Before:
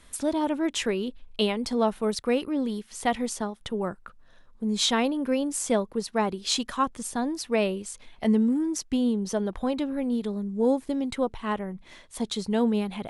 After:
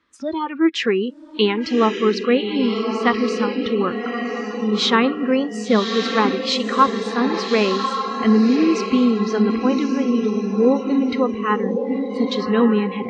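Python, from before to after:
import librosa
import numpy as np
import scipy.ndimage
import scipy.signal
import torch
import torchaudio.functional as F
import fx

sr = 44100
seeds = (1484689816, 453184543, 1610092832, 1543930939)

y = fx.cabinet(x, sr, low_hz=120.0, low_slope=12, high_hz=4800.0, hz=(160.0, 320.0, 680.0, 1200.0, 1800.0, 3500.0), db=(-7, 9, -9, 8, 3, -3))
y = fx.echo_diffused(y, sr, ms=1152, feedback_pct=50, wet_db=-4.0)
y = fx.noise_reduce_blind(y, sr, reduce_db=18)
y = y * 10.0 ** (7.5 / 20.0)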